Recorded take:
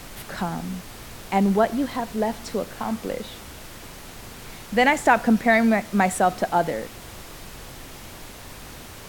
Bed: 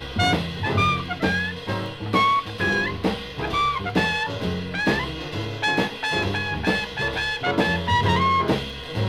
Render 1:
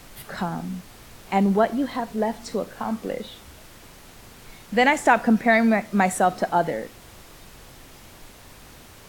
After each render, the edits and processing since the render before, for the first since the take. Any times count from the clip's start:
noise reduction from a noise print 6 dB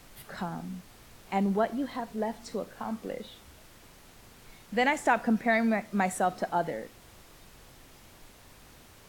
level −7.5 dB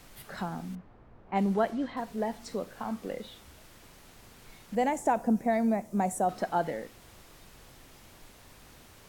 0:00.75–0:01.97: low-pass that shuts in the quiet parts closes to 910 Hz, open at −23 dBFS
0:04.75–0:06.29: flat-topped bell 2,400 Hz −11.5 dB 2.3 octaves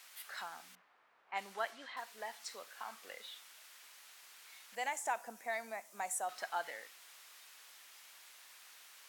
high-pass filter 1,400 Hz 12 dB per octave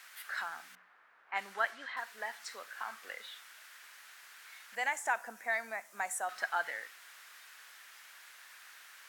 parametric band 1,600 Hz +10 dB 0.95 octaves
mains-hum notches 60/120/180 Hz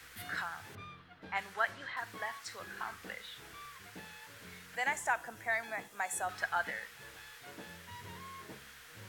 mix in bed −29.5 dB

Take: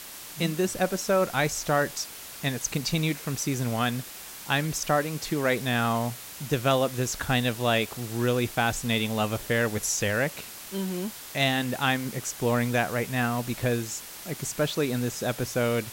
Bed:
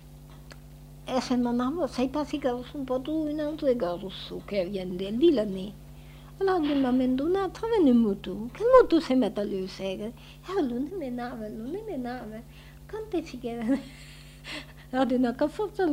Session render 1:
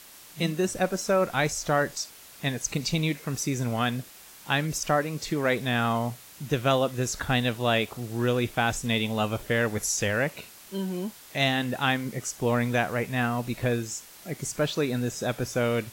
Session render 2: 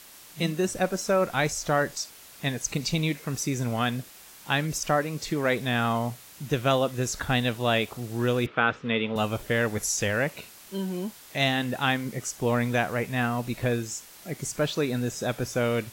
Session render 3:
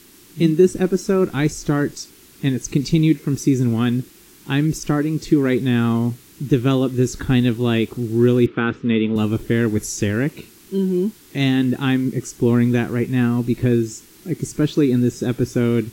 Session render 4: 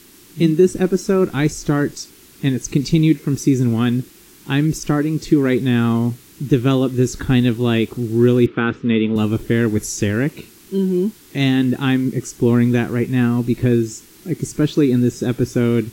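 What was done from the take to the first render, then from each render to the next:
noise reduction from a noise print 7 dB
0:08.46–0:09.16: loudspeaker in its box 150–3,300 Hz, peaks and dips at 470 Hz +6 dB, 740 Hz −5 dB, 1,300 Hz +10 dB
low shelf with overshoot 460 Hz +9 dB, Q 3
level +1.5 dB; brickwall limiter −3 dBFS, peak gain reduction 1.5 dB

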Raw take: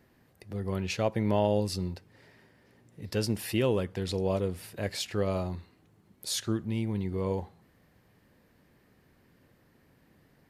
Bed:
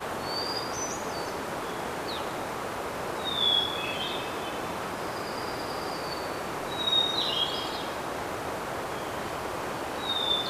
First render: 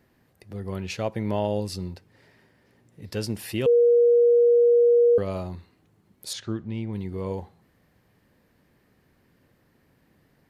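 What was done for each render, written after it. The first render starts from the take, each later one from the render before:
0:03.66–0:05.18: beep over 476 Hz −14 dBFS
0:06.33–0:06.93: high-frequency loss of the air 110 metres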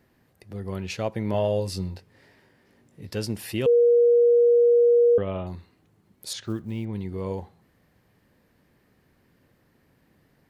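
0:01.32–0:03.07: double-tracking delay 21 ms −5.5 dB
0:04.31–0:05.47: bad sample-rate conversion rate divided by 6×, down none, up filtered
0:06.43–0:06.87: one scale factor per block 7 bits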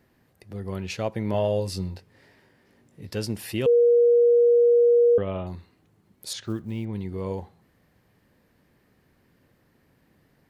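no processing that can be heard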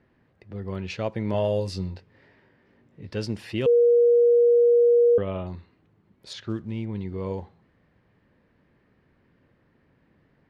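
low-pass that shuts in the quiet parts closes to 2,800 Hz, open at −16.5 dBFS
parametric band 750 Hz −3 dB 0.22 octaves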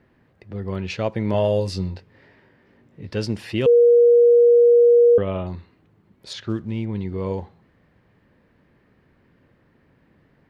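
level +4.5 dB

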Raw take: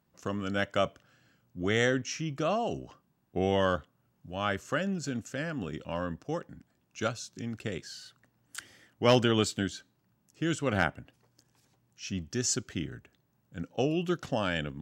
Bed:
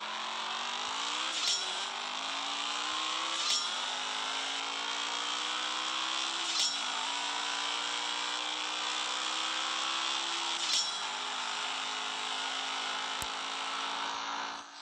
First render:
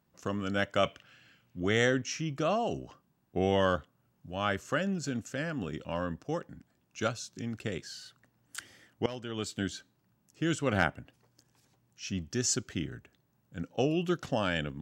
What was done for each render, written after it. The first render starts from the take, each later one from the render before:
0:00.83–0:01.60: parametric band 2,600 Hz +12 dB 1.3 octaves
0:09.06–0:09.71: fade in quadratic, from −19.5 dB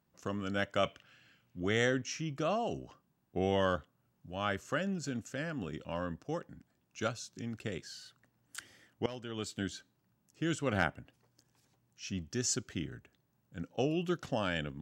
level −3.5 dB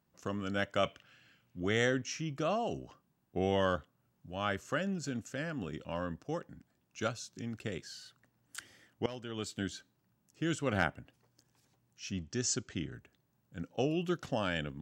0:12.11–0:12.94: Butterworth low-pass 8,200 Hz 48 dB per octave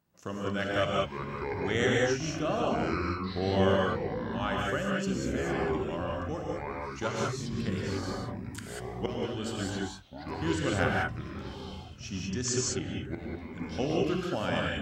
delay with pitch and tempo change per echo 338 ms, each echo −6 semitones, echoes 3, each echo −6 dB
reverb whose tail is shaped and stops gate 220 ms rising, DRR −2.5 dB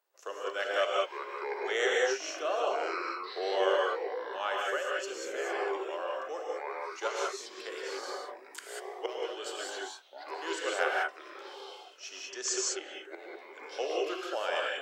Butterworth high-pass 390 Hz 48 dB per octave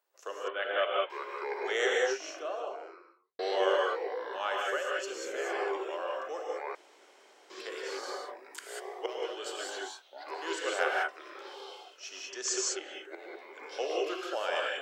0:00.48–0:01.10: elliptic low-pass filter 3,500 Hz
0:01.83–0:03.39: fade out and dull
0:06.75–0:07.50: fill with room tone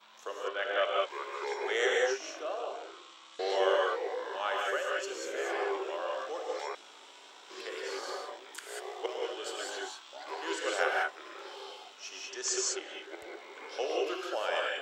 mix in bed −20 dB

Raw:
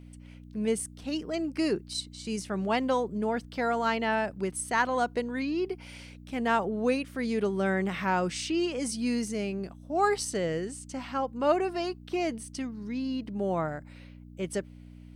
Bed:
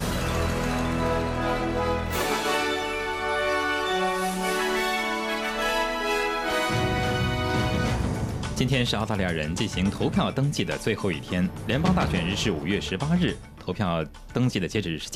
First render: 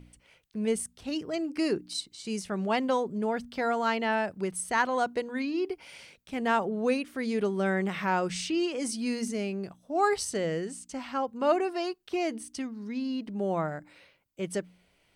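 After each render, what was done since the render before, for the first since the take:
hum removal 60 Hz, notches 5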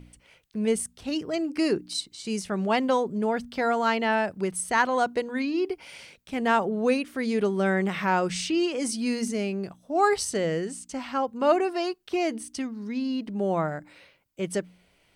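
level +3.5 dB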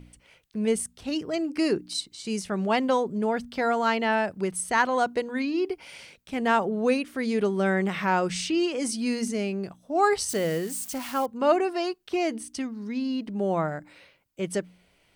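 0:10.29–0:11.26: spike at every zero crossing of −30.5 dBFS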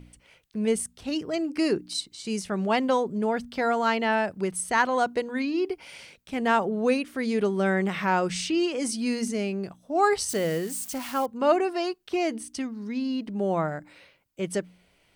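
no processing that can be heard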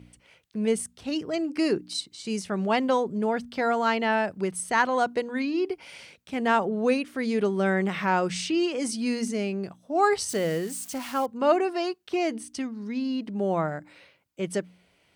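high-pass filter 68 Hz
high-shelf EQ 11,000 Hz −5.5 dB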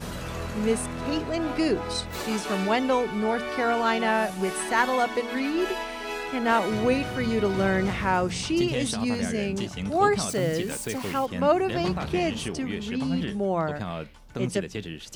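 mix in bed −7.5 dB

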